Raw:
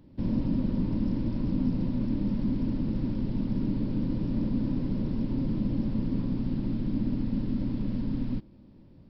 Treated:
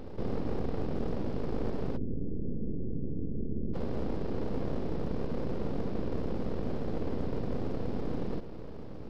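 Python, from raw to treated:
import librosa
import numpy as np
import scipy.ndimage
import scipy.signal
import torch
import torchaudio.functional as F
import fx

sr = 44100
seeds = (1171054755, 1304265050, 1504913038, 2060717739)

y = fx.bin_compress(x, sr, power=0.4)
y = np.abs(y)
y = fx.cheby2_lowpass(y, sr, hz=1700.0, order=4, stop_db=70, at=(1.96, 3.73), fade=0.02)
y = F.gain(torch.from_numpy(y), -6.0).numpy()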